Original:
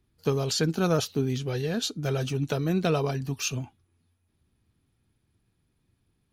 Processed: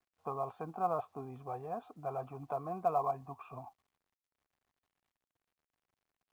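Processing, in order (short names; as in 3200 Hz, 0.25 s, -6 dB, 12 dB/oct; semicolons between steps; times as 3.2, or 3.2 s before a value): bell 1300 Hz +6.5 dB 0.69 oct; in parallel at -1 dB: limiter -22 dBFS, peak gain reduction 11 dB; on the sum: vocal tract filter a; companded quantiser 8-bit; gain +3 dB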